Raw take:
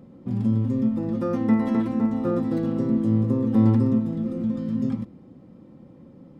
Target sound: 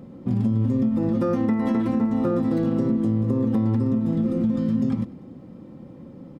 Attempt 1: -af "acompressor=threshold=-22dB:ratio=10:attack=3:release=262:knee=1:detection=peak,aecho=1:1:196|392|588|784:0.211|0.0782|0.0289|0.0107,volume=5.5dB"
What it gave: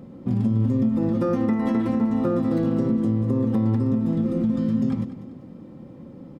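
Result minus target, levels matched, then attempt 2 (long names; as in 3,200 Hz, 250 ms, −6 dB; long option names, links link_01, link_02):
echo-to-direct +11.5 dB
-af "acompressor=threshold=-22dB:ratio=10:attack=3:release=262:knee=1:detection=peak,aecho=1:1:196|392:0.0562|0.0208,volume=5.5dB"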